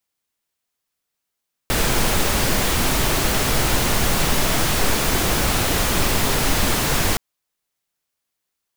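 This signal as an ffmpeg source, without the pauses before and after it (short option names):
-f lavfi -i "anoisesrc=c=pink:a=0.61:d=5.47:r=44100:seed=1"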